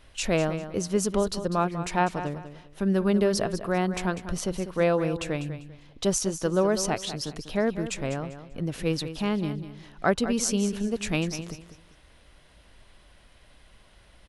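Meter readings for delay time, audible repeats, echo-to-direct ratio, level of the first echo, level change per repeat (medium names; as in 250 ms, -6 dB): 197 ms, 3, -11.0 dB, -11.5 dB, -11.5 dB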